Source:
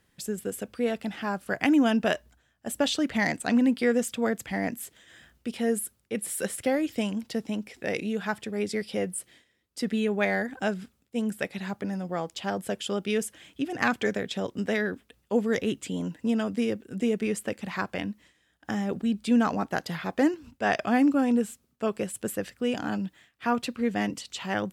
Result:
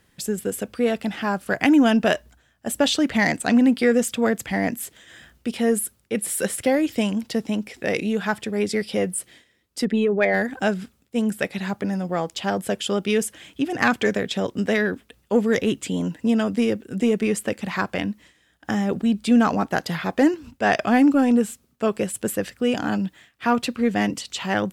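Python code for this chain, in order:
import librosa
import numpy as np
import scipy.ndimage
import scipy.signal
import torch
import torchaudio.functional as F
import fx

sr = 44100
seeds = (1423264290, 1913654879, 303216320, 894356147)

p1 = fx.envelope_sharpen(x, sr, power=1.5, at=(9.84, 10.33), fade=0.02)
p2 = 10.0 ** (-21.5 / 20.0) * np.tanh(p1 / 10.0 ** (-21.5 / 20.0))
p3 = p1 + (p2 * librosa.db_to_amplitude(-7.0))
y = p3 * librosa.db_to_amplitude(3.5)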